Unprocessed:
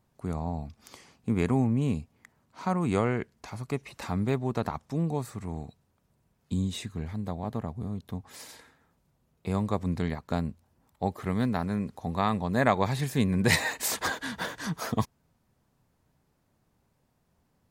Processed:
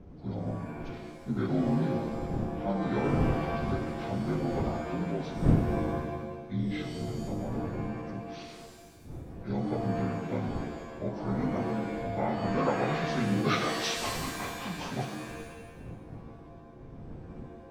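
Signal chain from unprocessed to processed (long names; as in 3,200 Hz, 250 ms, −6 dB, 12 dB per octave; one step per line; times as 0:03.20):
partials spread apart or drawn together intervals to 78%
wind on the microphone 200 Hz −35 dBFS
reverb with rising layers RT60 1.2 s, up +7 semitones, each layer −2 dB, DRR 4.5 dB
level −4 dB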